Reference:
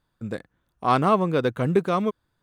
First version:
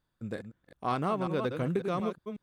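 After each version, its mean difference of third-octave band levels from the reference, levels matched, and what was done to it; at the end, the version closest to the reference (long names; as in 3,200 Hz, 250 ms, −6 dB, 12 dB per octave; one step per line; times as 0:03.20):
3.5 dB: delay that plays each chunk backwards 182 ms, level −8 dB
parametric band 1,000 Hz −2 dB
downward compressor, threshold −20 dBFS, peak gain reduction 6.5 dB
level −6 dB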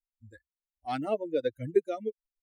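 11.0 dB: spectral dynamics exaggerated over time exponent 3
high-shelf EQ 3,400 Hz −7.5 dB
phaser with its sweep stopped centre 440 Hz, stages 4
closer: first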